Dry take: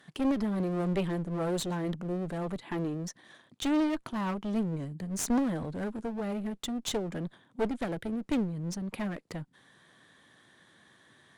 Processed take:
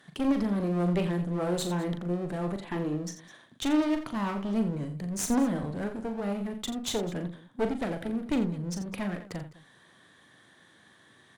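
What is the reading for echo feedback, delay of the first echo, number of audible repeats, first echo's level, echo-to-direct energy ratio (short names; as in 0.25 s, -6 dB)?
no steady repeat, 40 ms, 3, -7.5 dB, -6.0 dB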